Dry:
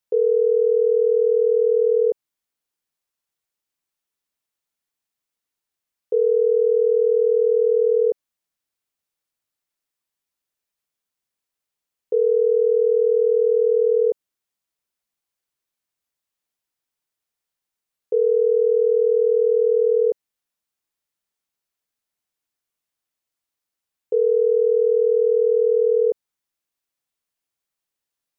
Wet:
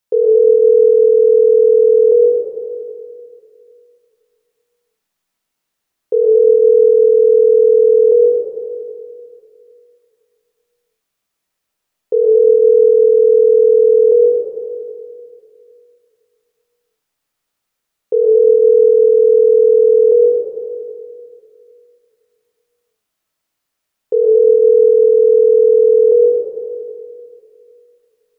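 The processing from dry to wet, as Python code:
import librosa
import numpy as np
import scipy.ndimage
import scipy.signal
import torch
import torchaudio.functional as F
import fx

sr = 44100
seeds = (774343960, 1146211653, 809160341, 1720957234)

y = fx.rev_freeverb(x, sr, rt60_s=2.4, hf_ratio=0.45, predelay_ms=75, drr_db=-4.0)
y = F.gain(torch.from_numpy(y), 5.5).numpy()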